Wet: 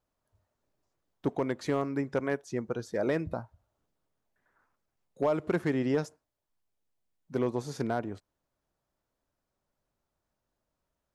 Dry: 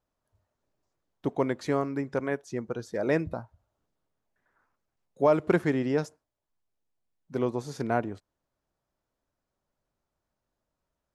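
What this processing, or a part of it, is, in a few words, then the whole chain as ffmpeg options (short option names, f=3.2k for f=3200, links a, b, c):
limiter into clipper: -af "alimiter=limit=-17dB:level=0:latency=1:release=194,asoftclip=type=hard:threshold=-19dB"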